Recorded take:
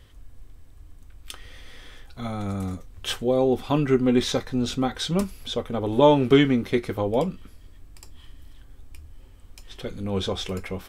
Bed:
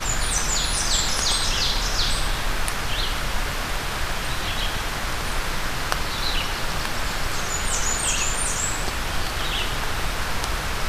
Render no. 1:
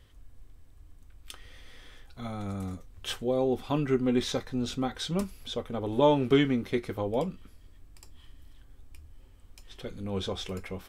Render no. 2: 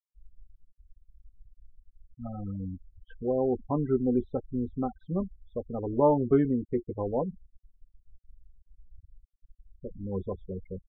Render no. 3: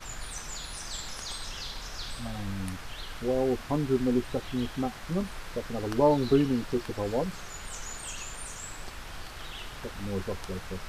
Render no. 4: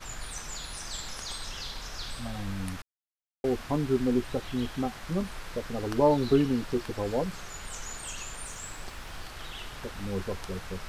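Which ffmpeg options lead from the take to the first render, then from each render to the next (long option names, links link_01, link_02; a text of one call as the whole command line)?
ffmpeg -i in.wav -af "volume=-6dB" out.wav
ffmpeg -i in.wav -af "afftfilt=real='re*gte(hypot(re,im),0.0447)':imag='im*gte(hypot(re,im),0.0447)':win_size=1024:overlap=0.75,lowpass=frequency=1300:width=0.5412,lowpass=frequency=1300:width=1.3066" out.wav
ffmpeg -i in.wav -i bed.wav -filter_complex "[1:a]volume=-16dB[link_01];[0:a][link_01]amix=inputs=2:normalize=0" out.wav
ffmpeg -i in.wav -filter_complex "[0:a]asettb=1/sr,asplit=3[link_01][link_02][link_03];[link_01]atrim=end=8.424[link_04];[link_02]atrim=start=8.42:end=9.27,asetpts=PTS-STARTPTS,afade=type=in:duration=0.004:curve=qsin,afade=type=out:start_time=0.846:duration=0.004:curve=qsin,aeval=exprs='val(0)*gte(abs(val(0)),0.0015)':channel_layout=same[link_05];[link_03]atrim=start=9.266[link_06];[link_04][link_05]acrossfade=duration=0.004:curve1=hsin:curve2=qsin[link_07];[link_07][link_06]acrossfade=duration=0.004:curve1=qsin:curve2=hsin,asplit=3[link_08][link_09][link_10];[link_08]atrim=end=2.82,asetpts=PTS-STARTPTS,afade=type=out:start_time=2.816:duration=0.004:curve=hsin[link_11];[link_09]atrim=start=2.82:end=3.44,asetpts=PTS-STARTPTS,volume=0[link_12];[link_10]atrim=start=3.44,asetpts=PTS-STARTPTS,afade=type=in:duration=0.004:curve=hsin[link_13];[link_11][link_12][link_13]concat=n=3:v=0:a=1" out.wav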